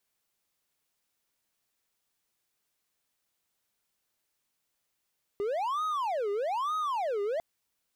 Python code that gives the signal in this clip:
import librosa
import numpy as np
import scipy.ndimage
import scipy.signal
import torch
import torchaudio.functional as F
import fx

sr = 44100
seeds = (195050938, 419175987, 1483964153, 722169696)

y = fx.siren(sr, length_s=2.0, kind='wail', low_hz=402.0, high_hz=1260.0, per_s=1.1, wave='triangle', level_db=-26.0)